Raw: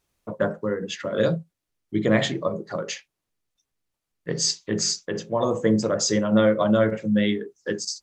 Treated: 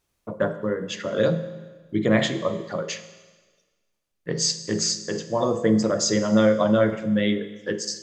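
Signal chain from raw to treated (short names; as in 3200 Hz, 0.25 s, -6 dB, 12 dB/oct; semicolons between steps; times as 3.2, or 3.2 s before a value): Schroeder reverb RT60 1.4 s, combs from 33 ms, DRR 11.5 dB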